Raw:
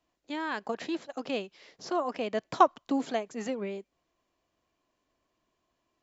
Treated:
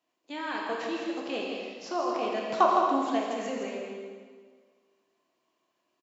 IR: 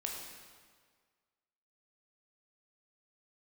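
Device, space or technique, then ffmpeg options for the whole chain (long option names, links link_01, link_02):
stadium PA: -filter_complex "[0:a]highpass=220,equalizer=frequency=2800:width_type=o:width=0.24:gain=3,aecho=1:1:163.3|221.6:0.501|0.282[link_01];[1:a]atrim=start_sample=2205[link_02];[link_01][link_02]afir=irnorm=-1:irlink=0"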